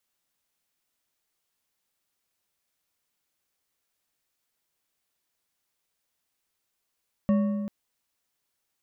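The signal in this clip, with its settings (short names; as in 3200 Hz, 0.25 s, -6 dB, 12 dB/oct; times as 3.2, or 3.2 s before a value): metal hit bar, length 0.39 s, lowest mode 206 Hz, decay 1.90 s, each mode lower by 9.5 dB, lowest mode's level -18 dB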